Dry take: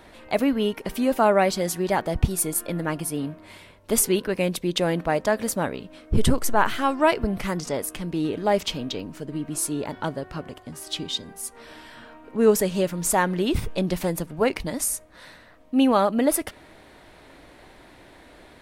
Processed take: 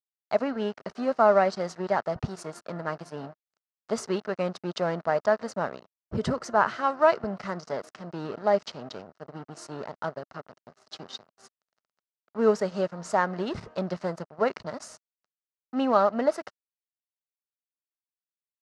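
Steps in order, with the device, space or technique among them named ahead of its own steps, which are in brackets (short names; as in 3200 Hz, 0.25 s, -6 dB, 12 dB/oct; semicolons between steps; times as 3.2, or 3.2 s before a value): blown loudspeaker (crossover distortion -35 dBFS; speaker cabinet 150–5600 Hz, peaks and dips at 300 Hz -8 dB, 640 Hz +5 dB, 1300 Hz +6 dB, 2400 Hz -8 dB, 3400 Hz -10 dB); gain -3 dB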